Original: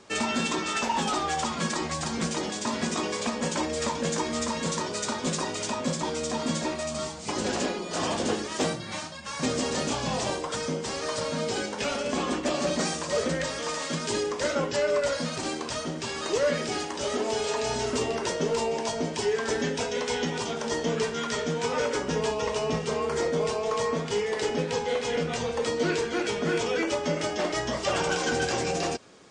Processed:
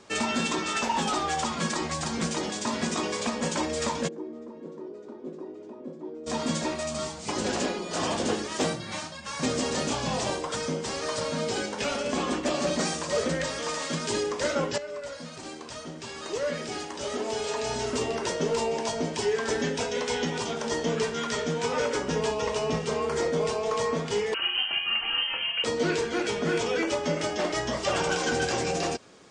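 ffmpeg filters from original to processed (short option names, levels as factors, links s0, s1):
-filter_complex "[0:a]asplit=3[s0][s1][s2];[s0]afade=t=out:st=4.07:d=0.02[s3];[s1]bandpass=f=350:t=q:w=4.3,afade=t=in:st=4.07:d=0.02,afade=t=out:st=6.26:d=0.02[s4];[s2]afade=t=in:st=6.26:d=0.02[s5];[s3][s4][s5]amix=inputs=3:normalize=0,asettb=1/sr,asplit=3[s6][s7][s8];[s6]atrim=end=24.344[s9];[s7]atrim=start=24.34:end=25.64,asetpts=PTS-STARTPTS,afade=t=in:d=0.004:c=qsin,afade=t=out:st=1.296:d=0.004:c=qsin,lowpass=f=2800:t=q:w=0.5098,lowpass=f=2800:t=q:w=0.6013,lowpass=f=2800:t=q:w=0.9,lowpass=f=2800:t=q:w=2.563,afreqshift=-3300[s10];[s8]atrim=start=25.636[s11];[s9][s10]acrossfade=d=0.004:c1=hsin:c2=qsin[s12];[s12][s11]acrossfade=d=0.004:c1=qsin:c2=hsin,asplit=2[s13][s14];[s13]atrim=end=14.78,asetpts=PTS-STARTPTS,afade=t=out:st=14.776:d=0.004:c=hsin:silence=0.223872[s15];[s14]atrim=start=14.78,asetpts=PTS-STARTPTS,afade=t=in:d=3.74:silence=0.223872[s16];[s15][s16]concat=n=2:v=0:a=1"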